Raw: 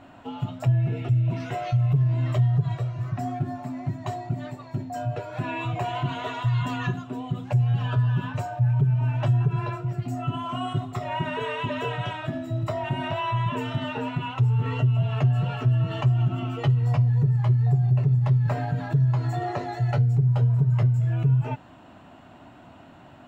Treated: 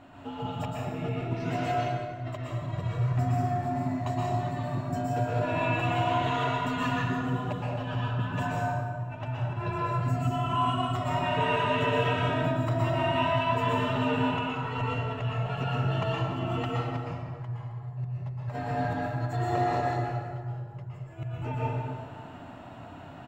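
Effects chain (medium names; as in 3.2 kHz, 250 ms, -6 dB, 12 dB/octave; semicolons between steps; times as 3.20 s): compressor with a negative ratio -27 dBFS, ratio -0.5; speakerphone echo 180 ms, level -12 dB; plate-style reverb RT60 1.9 s, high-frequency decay 0.55×, pre-delay 105 ms, DRR -5.5 dB; trim -7.5 dB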